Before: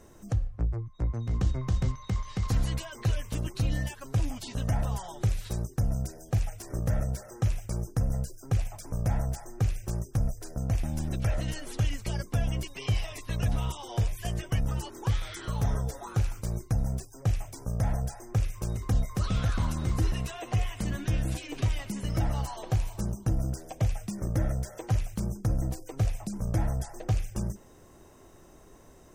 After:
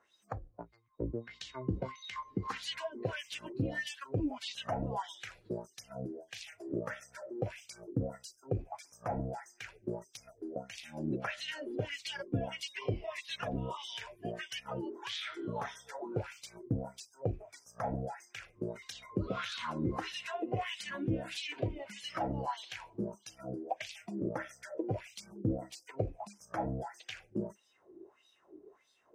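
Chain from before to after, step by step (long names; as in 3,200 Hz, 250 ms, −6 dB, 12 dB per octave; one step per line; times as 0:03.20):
LFO wah 1.6 Hz 300–3,900 Hz, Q 2.5
noise reduction from a noise print of the clip's start 12 dB
level +8.5 dB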